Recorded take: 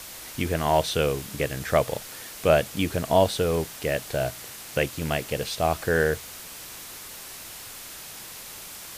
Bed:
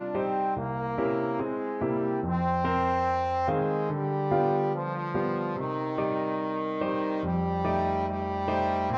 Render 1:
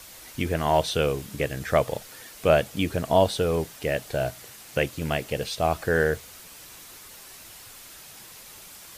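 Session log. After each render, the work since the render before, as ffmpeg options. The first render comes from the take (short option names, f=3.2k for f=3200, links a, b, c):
-af "afftdn=nr=6:nf=-41"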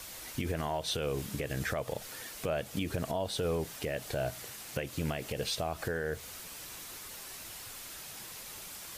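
-af "acompressor=threshold=-25dB:ratio=5,alimiter=limit=-23dB:level=0:latency=1:release=74"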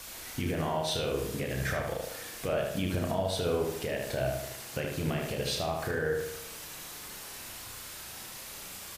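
-filter_complex "[0:a]asplit=2[a][b];[b]adelay=32,volume=-5.5dB[c];[a][c]amix=inputs=2:normalize=0,asplit=2[d][e];[e]adelay=75,lowpass=f=3.4k:p=1,volume=-3dB,asplit=2[f][g];[g]adelay=75,lowpass=f=3.4k:p=1,volume=0.52,asplit=2[h][i];[i]adelay=75,lowpass=f=3.4k:p=1,volume=0.52,asplit=2[j][k];[k]adelay=75,lowpass=f=3.4k:p=1,volume=0.52,asplit=2[l][m];[m]adelay=75,lowpass=f=3.4k:p=1,volume=0.52,asplit=2[n][o];[o]adelay=75,lowpass=f=3.4k:p=1,volume=0.52,asplit=2[p][q];[q]adelay=75,lowpass=f=3.4k:p=1,volume=0.52[r];[d][f][h][j][l][n][p][r]amix=inputs=8:normalize=0"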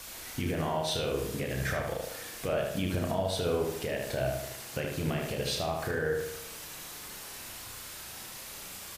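-af anull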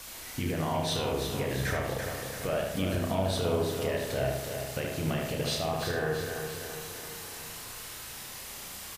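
-filter_complex "[0:a]asplit=2[a][b];[b]adelay=31,volume=-12.5dB[c];[a][c]amix=inputs=2:normalize=0,aecho=1:1:336|672|1008|1344|1680|2016|2352:0.447|0.241|0.13|0.0703|0.038|0.0205|0.0111"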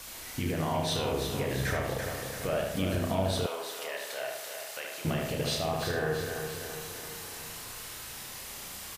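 -filter_complex "[0:a]asettb=1/sr,asplit=3[a][b][c];[a]atrim=end=3.464[d];[b]atrim=start=3.46:end=5.05,asetpts=PTS-STARTPTS,afade=t=in:d=0.004:c=qsin,afade=t=out:st=1.586:d=0.004:c=qsin,highpass=810[e];[c]atrim=start=5.046[f];[d][e]acrossfade=d=0.004:c1=hsin:c2=qsin[g];[g][f]acrossfade=d=0.004:c1=qsin:c2=hsin"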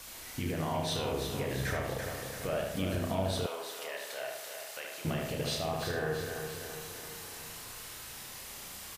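-af "volume=-3dB"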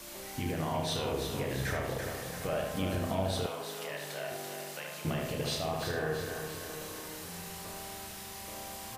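-filter_complex "[1:a]volume=-20dB[a];[0:a][a]amix=inputs=2:normalize=0"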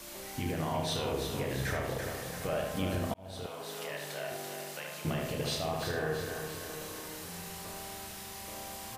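-filter_complex "[0:a]asplit=2[a][b];[a]atrim=end=3.14,asetpts=PTS-STARTPTS,afade=t=out:st=3.136:d=0.004:c=hsin[c];[b]atrim=start=3.14,asetpts=PTS-STARTPTS,afade=t=in:d=0.64[d];[c][d]concat=n=2:v=0:a=1"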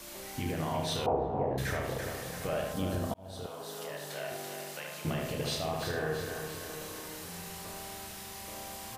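-filter_complex "[0:a]asettb=1/sr,asplit=3[a][b][c];[a]atrim=end=1.064[d];[b]atrim=start=1.06:end=1.58,asetpts=PTS-STARTPTS,afade=t=in:d=0.004:c=qsin,afade=t=out:st=0.516:d=0.004:c=qsin,lowpass=f=790:t=q:w=4.8[e];[c]atrim=start=1.576[f];[d][e]acrossfade=d=0.004:c1=hsin:c2=qsin[g];[g][f]acrossfade=d=0.004:c1=qsin:c2=hsin,asettb=1/sr,asplit=3[h][i][j];[h]atrim=end=2.734[k];[i]atrim=start=2.73:end=4.11,asetpts=PTS-STARTPTS,afade=t=in:d=0.004:c=qsin,afade=t=out:st=1.376:d=0.004:c=qsin,equalizer=f=2.3k:t=o:w=0.71:g=-8[l];[j]atrim=start=4.106[m];[k][l]acrossfade=d=0.004:c1=hsin:c2=qsin[n];[n][m]acrossfade=d=0.004:c1=qsin:c2=hsin"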